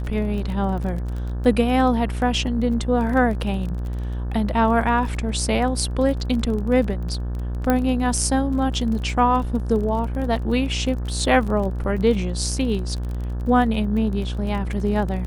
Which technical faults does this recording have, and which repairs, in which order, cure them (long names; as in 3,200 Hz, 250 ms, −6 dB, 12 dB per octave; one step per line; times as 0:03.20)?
mains buzz 60 Hz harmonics 30 −26 dBFS
surface crackle 28 per second −29 dBFS
0:07.70: click −7 dBFS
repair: click removal
hum removal 60 Hz, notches 30